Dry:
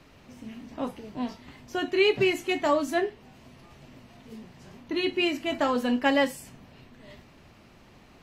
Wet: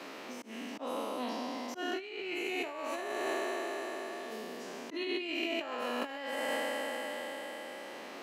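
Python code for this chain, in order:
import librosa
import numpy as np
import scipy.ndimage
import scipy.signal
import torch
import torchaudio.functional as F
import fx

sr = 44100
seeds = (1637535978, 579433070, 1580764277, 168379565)

y = fx.spec_trails(x, sr, decay_s=2.99)
y = scipy.signal.sosfilt(scipy.signal.butter(4, 280.0, 'highpass', fs=sr, output='sos'), y)
y = fx.over_compress(y, sr, threshold_db=-25.0, ratio=-0.5)
y = fx.auto_swell(y, sr, attack_ms=230.0)
y = fx.band_squash(y, sr, depth_pct=70)
y = y * librosa.db_to_amplitude(-9.0)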